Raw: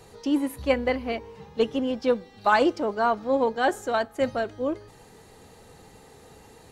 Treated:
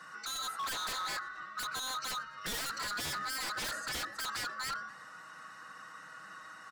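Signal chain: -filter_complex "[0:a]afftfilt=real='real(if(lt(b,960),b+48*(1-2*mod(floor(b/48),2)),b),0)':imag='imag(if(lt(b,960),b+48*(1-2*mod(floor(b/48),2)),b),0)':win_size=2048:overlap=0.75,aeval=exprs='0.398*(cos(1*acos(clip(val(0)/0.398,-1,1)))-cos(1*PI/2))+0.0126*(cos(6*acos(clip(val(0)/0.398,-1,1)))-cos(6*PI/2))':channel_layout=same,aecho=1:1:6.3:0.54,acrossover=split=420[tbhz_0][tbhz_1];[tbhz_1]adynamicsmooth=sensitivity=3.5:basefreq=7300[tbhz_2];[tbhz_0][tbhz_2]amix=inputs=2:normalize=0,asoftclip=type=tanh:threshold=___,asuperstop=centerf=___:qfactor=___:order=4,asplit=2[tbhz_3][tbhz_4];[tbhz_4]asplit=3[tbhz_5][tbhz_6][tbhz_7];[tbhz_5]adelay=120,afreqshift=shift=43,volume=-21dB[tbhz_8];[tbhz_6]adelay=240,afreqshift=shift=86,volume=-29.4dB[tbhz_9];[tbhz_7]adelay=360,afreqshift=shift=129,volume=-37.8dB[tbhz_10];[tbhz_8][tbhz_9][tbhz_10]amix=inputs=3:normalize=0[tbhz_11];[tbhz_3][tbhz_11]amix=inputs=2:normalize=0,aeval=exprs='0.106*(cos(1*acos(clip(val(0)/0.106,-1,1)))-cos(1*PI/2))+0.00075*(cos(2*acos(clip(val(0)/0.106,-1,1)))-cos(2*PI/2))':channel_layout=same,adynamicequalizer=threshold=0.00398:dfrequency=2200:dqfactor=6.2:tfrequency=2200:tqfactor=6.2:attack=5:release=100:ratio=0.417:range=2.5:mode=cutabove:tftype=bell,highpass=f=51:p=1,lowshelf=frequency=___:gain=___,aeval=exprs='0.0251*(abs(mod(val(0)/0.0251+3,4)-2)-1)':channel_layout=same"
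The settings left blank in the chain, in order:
-23.5dB, 3300, 7, 98, -11.5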